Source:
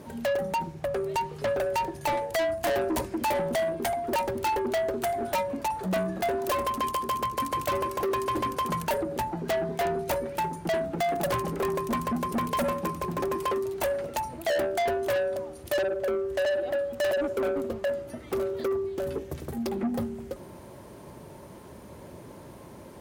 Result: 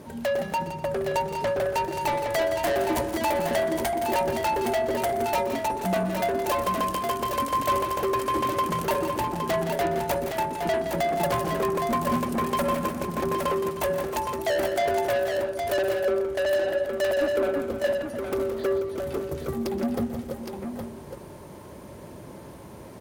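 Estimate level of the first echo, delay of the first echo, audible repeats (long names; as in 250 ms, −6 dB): −15.0 dB, 123 ms, 5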